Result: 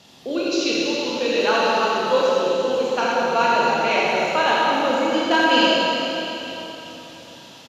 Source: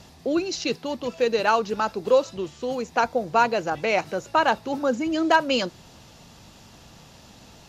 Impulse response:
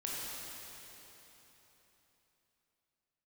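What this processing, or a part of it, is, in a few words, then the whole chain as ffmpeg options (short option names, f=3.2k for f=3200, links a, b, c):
PA in a hall: -filter_complex "[0:a]highpass=160,equalizer=f=3.3k:t=o:w=0.73:g=8,aecho=1:1:82:0.473[a];[1:a]atrim=start_sample=2205[b];[a][b]afir=irnorm=-1:irlink=0"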